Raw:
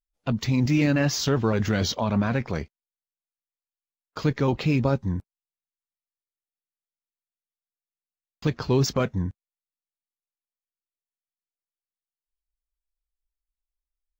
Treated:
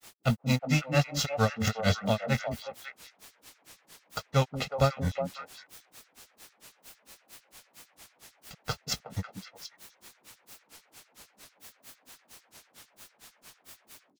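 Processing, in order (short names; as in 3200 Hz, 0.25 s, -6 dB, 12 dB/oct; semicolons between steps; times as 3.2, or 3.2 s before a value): spectral whitening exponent 0.6; comb 1.5 ms, depth 88%; in parallel at -6.5 dB: requantised 6-bit, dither triangular; on the sum: grains 0.143 s, grains 4.4/s, pitch spread up and down by 0 st; delay with a stepping band-pass 0.183 s, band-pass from 250 Hz, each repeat 1.4 oct, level -2 dB; gain -4.5 dB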